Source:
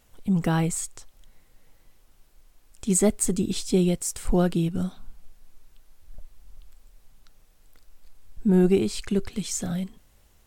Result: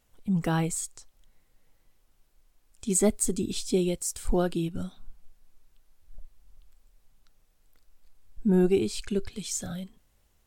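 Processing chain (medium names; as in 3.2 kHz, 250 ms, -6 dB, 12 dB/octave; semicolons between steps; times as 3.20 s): spectral noise reduction 6 dB; trim -2 dB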